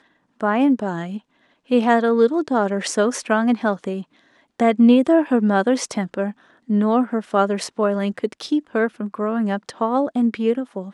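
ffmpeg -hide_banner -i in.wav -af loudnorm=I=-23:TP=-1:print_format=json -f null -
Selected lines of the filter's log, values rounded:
"input_i" : "-20.5",
"input_tp" : "-2.5",
"input_lra" : "4.0",
"input_thresh" : "-30.8",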